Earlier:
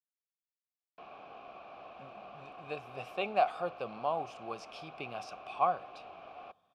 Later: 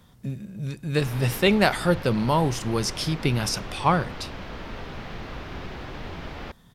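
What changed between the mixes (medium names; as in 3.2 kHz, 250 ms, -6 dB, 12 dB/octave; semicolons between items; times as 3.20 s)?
speech: entry -1.75 s; master: remove vowel filter a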